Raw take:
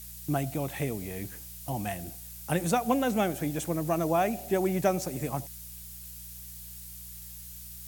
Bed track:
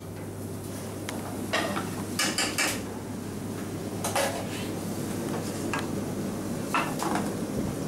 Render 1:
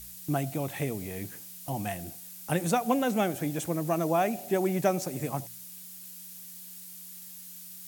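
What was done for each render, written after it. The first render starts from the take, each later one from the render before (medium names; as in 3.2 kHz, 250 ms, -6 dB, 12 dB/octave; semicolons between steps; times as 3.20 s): de-hum 60 Hz, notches 2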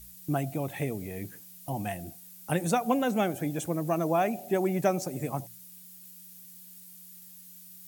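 noise reduction 7 dB, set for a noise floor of -46 dBFS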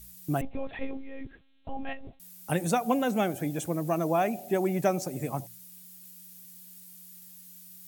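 0.41–2.20 s: monotone LPC vocoder at 8 kHz 270 Hz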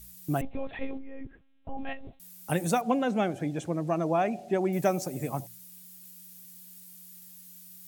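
0.98–1.78 s: distance through air 480 m; 2.81–4.73 s: distance through air 87 m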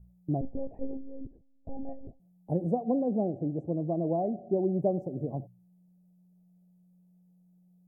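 inverse Chebyshev low-pass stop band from 1.3 kHz, stop band 40 dB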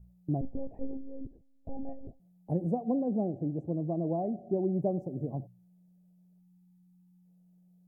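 6.39–7.25 s: spectral selection erased 370–750 Hz; dynamic bell 560 Hz, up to -4 dB, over -42 dBFS, Q 1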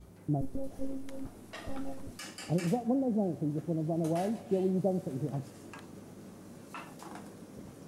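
add bed track -18 dB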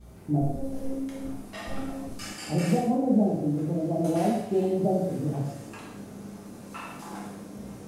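gated-style reverb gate 260 ms falling, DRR -5.5 dB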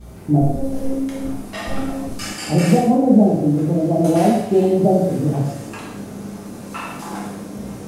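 trim +10 dB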